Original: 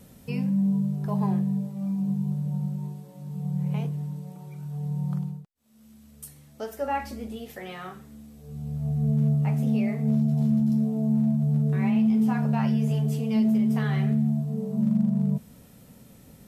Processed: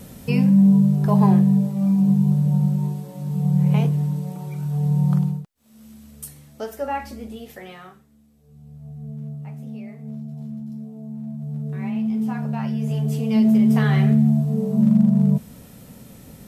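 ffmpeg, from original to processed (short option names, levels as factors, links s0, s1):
-af "volume=25.1,afade=t=out:st=5.38:d=1.61:silence=0.354813,afade=t=out:st=7.54:d=0.52:silence=0.266073,afade=t=in:st=11.17:d=0.99:silence=0.354813,afade=t=in:st=12.73:d=0.98:silence=0.354813"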